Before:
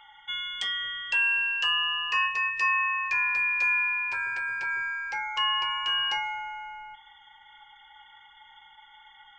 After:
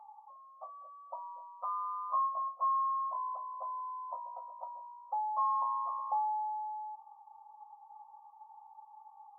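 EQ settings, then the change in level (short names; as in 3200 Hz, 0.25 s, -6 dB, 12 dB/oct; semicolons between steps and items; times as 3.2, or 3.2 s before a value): brick-wall FIR band-pass 510–1300 Hz; bell 660 Hz +12.5 dB 0.49 oct; -2.0 dB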